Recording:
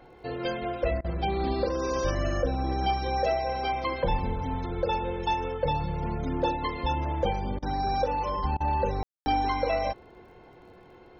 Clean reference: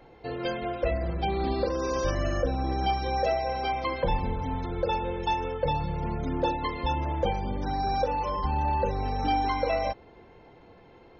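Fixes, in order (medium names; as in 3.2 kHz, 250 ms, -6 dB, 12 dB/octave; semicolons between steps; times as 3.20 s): de-click; de-hum 365.2 Hz, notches 4; room tone fill 9.03–9.26 s; interpolate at 1.01/7.59/8.57 s, 33 ms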